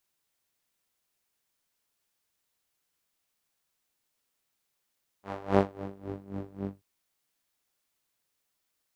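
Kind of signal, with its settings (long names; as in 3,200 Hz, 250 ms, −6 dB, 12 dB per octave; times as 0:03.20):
subtractive patch with tremolo G2, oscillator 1 saw, interval +12 semitones, detune 25 cents, filter bandpass, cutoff 150 Hz, Q 1.1, filter envelope 2.5 octaves, filter decay 0.93 s, attack 386 ms, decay 0.11 s, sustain −16 dB, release 0.15 s, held 1.44 s, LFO 3.7 Hz, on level 19 dB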